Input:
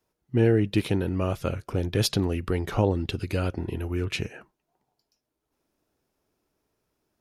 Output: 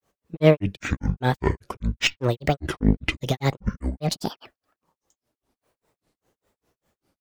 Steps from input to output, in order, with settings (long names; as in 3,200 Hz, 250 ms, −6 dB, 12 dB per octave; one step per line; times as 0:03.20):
harmonic generator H 4 −19 dB, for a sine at −9 dBFS
granular cloud 173 ms, grains 5 per second, spray 25 ms, pitch spread up and down by 12 semitones
level +8.5 dB